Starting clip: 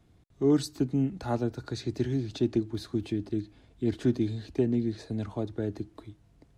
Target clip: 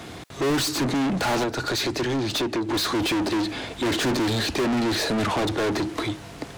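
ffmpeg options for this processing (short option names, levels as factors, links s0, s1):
-filter_complex "[0:a]asettb=1/sr,asplit=3[s0][s1][s2];[s0]atrim=end=1.434[s3];[s1]atrim=start=1.43:end=2.69,asetpts=PTS-STARTPTS,afade=t=in:d=0.004:c=qsin,afade=t=out:st=1.256:d=0.004:c=qsin,acompressor=threshold=0.0112:ratio=4[s4];[s2]atrim=start=2.686[s5];[s3][s4]acrossfade=d=0.004:c1=hsin:c2=qsin[s6];[s6][s5]acrossfade=d=0.004:c1=qsin:c2=hsin,asplit=2[s7][s8];[s8]highpass=f=720:p=1,volume=158,asoftclip=type=tanh:threshold=0.224[s9];[s7][s9]amix=inputs=2:normalize=0,lowpass=f=6900:p=1,volume=0.501,volume=0.668"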